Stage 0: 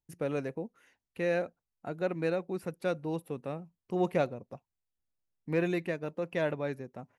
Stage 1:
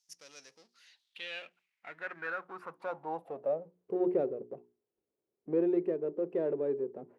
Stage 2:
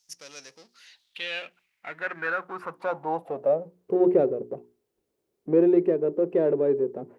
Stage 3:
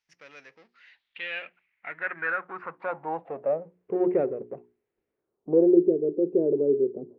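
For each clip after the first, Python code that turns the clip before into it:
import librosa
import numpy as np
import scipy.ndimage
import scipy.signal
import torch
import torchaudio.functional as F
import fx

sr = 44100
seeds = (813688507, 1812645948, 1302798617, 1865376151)

y1 = fx.power_curve(x, sr, exponent=0.7)
y1 = fx.hum_notches(y1, sr, base_hz=60, count=7)
y1 = fx.filter_sweep_bandpass(y1, sr, from_hz=5600.0, to_hz=400.0, start_s=0.51, end_s=4.03, q=5.3)
y1 = y1 * 10.0 ** (6.0 / 20.0)
y2 = fx.low_shelf(y1, sr, hz=85.0, db=8.0)
y2 = y2 * 10.0 ** (9.0 / 20.0)
y3 = fx.filter_sweep_lowpass(y2, sr, from_hz=2100.0, to_hz=380.0, start_s=5.11, end_s=5.8, q=2.1)
y3 = y3 * 10.0 ** (-4.0 / 20.0)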